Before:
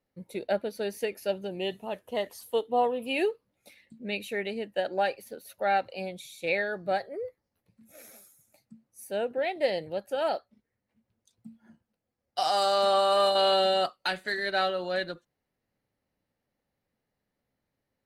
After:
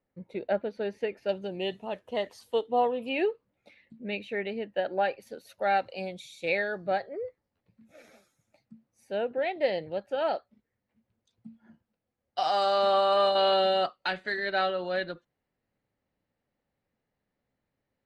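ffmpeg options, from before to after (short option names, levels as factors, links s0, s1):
-af "asetnsamples=n=441:p=0,asendcmd='1.29 lowpass f 5600;3.09 lowpass f 3000;5.22 lowpass f 7200;6.86 lowpass f 3800',lowpass=2500"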